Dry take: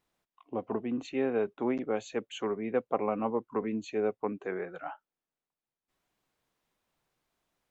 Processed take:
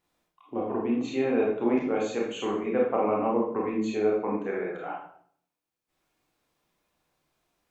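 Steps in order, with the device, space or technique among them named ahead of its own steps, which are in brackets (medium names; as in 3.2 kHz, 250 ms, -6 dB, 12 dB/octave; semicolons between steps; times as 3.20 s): bathroom (reverberation RT60 0.60 s, pre-delay 23 ms, DRR -3.5 dB)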